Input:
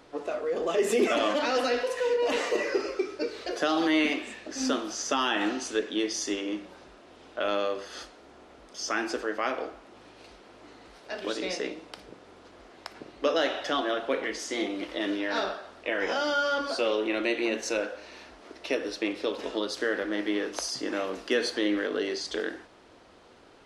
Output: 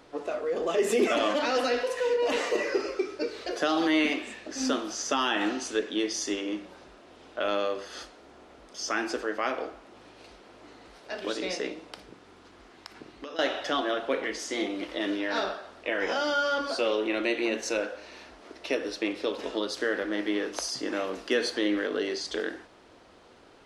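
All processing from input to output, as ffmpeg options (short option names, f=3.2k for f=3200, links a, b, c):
-filter_complex "[0:a]asettb=1/sr,asplit=3[a][b][c];[a]atrim=end=12.034[d];[b]atrim=start=12.03:end=13.39,asetpts=PTS-STARTPTS,afade=t=in:d=0.004:c=qsin,afade=t=out:st=1.356:d=0.004:c=qsin,equalizer=f=570:t=o:w=0.68:g=-6.5,acompressor=threshold=-36dB:ratio=10:attack=3.2:release=140:knee=1:detection=peak[e];[c]atrim=start=13.386[f];[d][e]acrossfade=d=0.004:c1=hsin:c2=qsin[g];[g][f]acrossfade=d=0.004:c1=qsin:c2=hsin"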